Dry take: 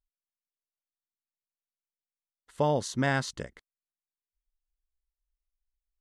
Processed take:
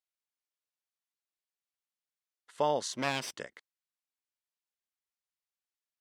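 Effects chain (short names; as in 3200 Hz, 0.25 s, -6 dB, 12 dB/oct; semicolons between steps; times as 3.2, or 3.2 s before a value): 2.93–3.37 minimum comb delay 0.36 ms; weighting filter A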